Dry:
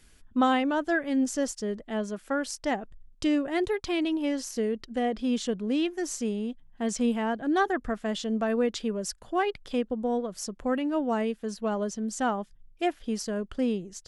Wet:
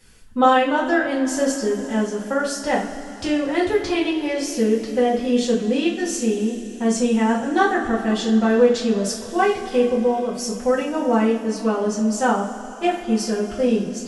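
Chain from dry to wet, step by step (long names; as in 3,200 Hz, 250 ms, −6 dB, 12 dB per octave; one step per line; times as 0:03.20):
coupled-rooms reverb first 0.37 s, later 4.2 s, from −19 dB, DRR −8 dB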